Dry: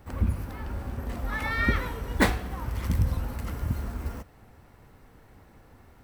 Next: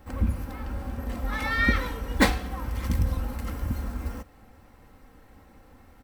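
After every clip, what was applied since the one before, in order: dynamic EQ 4600 Hz, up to +4 dB, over -45 dBFS, Q 0.88; comb 3.8 ms, depth 46%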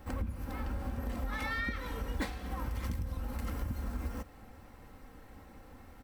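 compressor 12:1, threshold -32 dBFS, peak gain reduction 18.5 dB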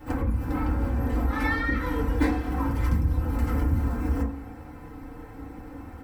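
FDN reverb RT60 0.47 s, low-frequency decay 1.4×, high-frequency decay 0.25×, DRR -8.5 dB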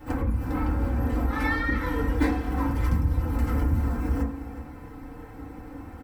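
echo 0.362 s -14 dB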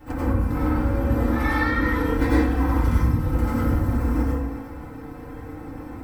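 plate-style reverb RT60 0.67 s, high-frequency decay 0.75×, pre-delay 80 ms, DRR -5 dB; gain -1.5 dB

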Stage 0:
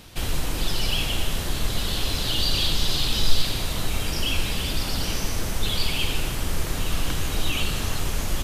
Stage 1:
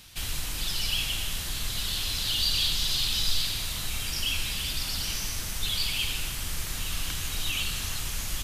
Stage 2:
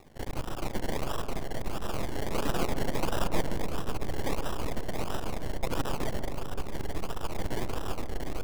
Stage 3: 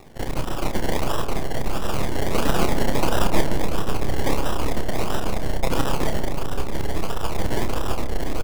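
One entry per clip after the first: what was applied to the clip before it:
passive tone stack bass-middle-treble 5-5-5; gain +6 dB
decimation with a swept rate 28×, swing 60% 1.5 Hz; half-wave rectifier; on a send: darkening echo 0.134 s, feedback 83%, low-pass 1100 Hz, level -10.5 dB
doubler 30 ms -7 dB; gain +8 dB

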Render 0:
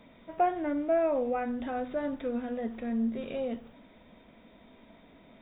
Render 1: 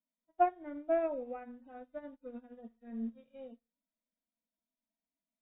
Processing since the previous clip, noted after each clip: median-filter separation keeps harmonic; upward expander 2.5:1, over -49 dBFS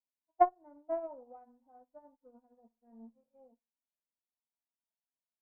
added harmonics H 3 -11 dB, 6 -43 dB, 8 -44 dB, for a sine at -15.5 dBFS; synth low-pass 890 Hz, resonance Q 4.9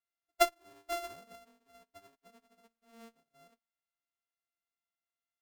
sample sorter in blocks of 64 samples; gain -2 dB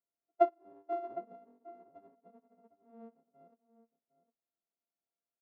Butterworth band-pass 370 Hz, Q 0.65; outdoor echo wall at 130 m, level -14 dB; gain +4 dB

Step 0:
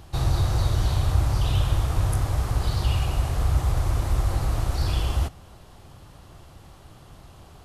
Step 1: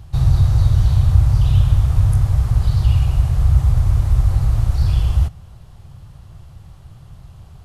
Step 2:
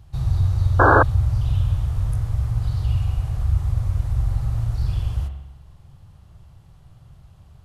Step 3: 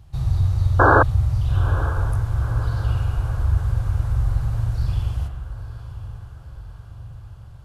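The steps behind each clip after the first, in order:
resonant low shelf 190 Hz +10 dB, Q 1.5; gain -2.5 dB
spring tank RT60 1 s, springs 44 ms, chirp 40 ms, DRR 5 dB; painted sound noise, 0.79–1.03, 260–1700 Hz -5 dBFS; gain -8.5 dB
diffused feedback echo 0.936 s, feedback 57%, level -14.5 dB

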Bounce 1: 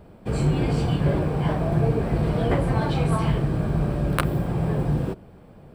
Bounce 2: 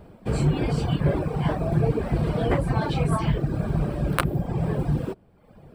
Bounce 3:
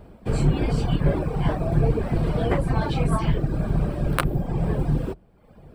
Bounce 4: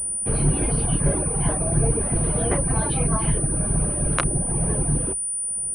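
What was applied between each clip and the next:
reverb removal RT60 0.92 s; gain +1 dB
octaver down 2 oct, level -2 dB
pulse-width modulation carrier 9400 Hz; gain -1 dB

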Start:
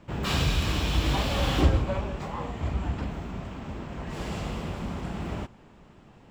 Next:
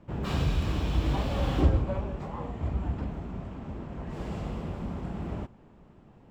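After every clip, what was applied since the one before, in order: tilt shelf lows +5.5 dB, about 1400 Hz; gain -6.5 dB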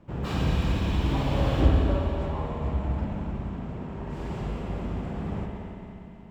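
multi-head echo 91 ms, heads second and third, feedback 61%, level -11 dB; spring tank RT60 2.4 s, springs 59 ms, chirp 70 ms, DRR 0.5 dB

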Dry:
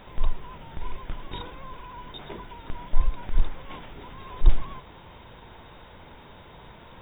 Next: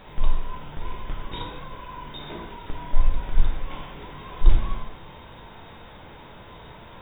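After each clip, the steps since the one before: plate-style reverb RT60 0.81 s, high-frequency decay 0.95×, DRR -0.5 dB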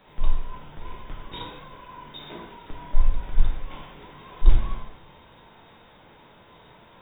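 three-band expander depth 40%; gain -3.5 dB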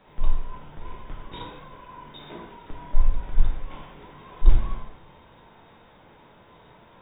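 high shelf 3400 Hz -8.5 dB

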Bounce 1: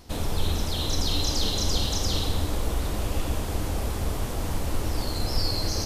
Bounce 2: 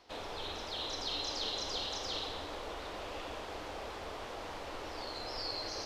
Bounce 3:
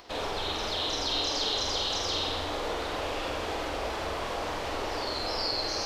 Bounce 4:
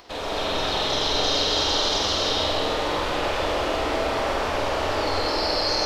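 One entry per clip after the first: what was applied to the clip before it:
three-band isolator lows -20 dB, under 380 Hz, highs -22 dB, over 5100 Hz; gain -5.5 dB
in parallel at +1 dB: limiter -35.5 dBFS, peak gain reduction 10 dB; on the sum: flutter echo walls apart 8.1 m, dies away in 0.54 s; upward compressor, threshold -54 dBFS; gain +3 dB
in parallel at -10.5 dB: soft clip -25 dBFS, distortion -18 dB; on the sum: digital reverb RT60 3.7 s, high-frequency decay 0.6×, pre-delay 0.105 s, DRR -5 dB

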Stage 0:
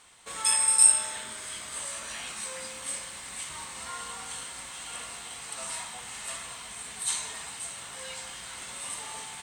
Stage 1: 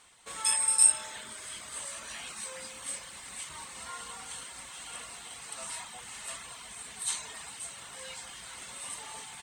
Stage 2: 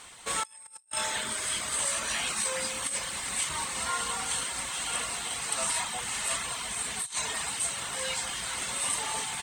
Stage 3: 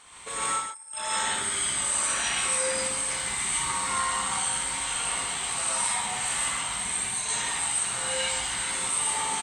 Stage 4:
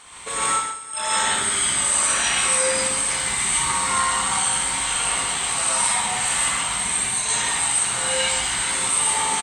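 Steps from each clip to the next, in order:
reverb removal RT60 0.5 s; gain -2.5 dB
negative-ratio compressor -39 dBFS, ratio -0.5; gain +7 dB
formant sharpening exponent 1.5; on a send: loudspeakers at several distances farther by 21 m -5 dB, 49 m -7 dB; on the sum: non-linear reverb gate 0.18 s rising, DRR -6 dB; gain -5 dB
feedback echo 0.198 s, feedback 45%, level -16 dB; gain +6.5 dB

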